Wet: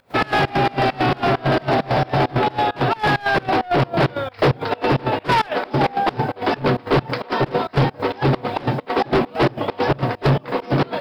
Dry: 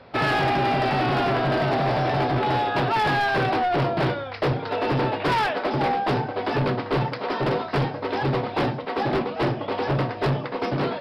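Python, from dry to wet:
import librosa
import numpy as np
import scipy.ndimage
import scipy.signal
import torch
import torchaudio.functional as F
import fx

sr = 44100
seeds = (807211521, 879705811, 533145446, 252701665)

p1 = fx.rider(x, sr, range_db=10, speed_s=0.5)
p2 = x + (p1 * librosa.db_to_amplitude(0.5))
p3 = fx.quant_dither(p2, sr, seeds[0], bits=10, dither='triangular')
y = fx.volume_shaper(p3, sr, bpm=133, per_beat=2, depth_db=-24, release_ms=99.0, shape='slow start')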